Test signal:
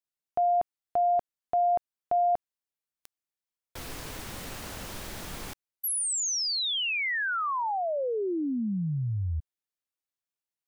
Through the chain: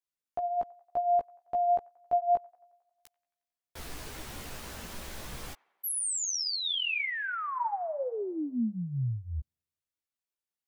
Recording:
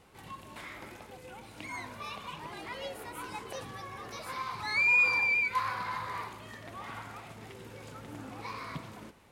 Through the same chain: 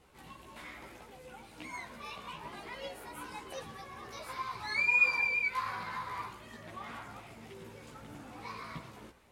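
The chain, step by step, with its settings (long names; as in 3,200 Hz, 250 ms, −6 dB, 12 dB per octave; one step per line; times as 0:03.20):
delay with a band-pass on its return 90 ms, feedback 63%, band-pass 1,200 Hz, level −23 dB
multi-voice chorus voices 4, 0.54 Hz, delay 15 ms, depth 2.7 ms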